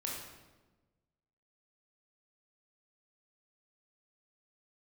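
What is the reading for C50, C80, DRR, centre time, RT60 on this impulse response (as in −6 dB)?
1.5 dB, 4.0 dB, −3.5 dB, 63 ms, 1.2 s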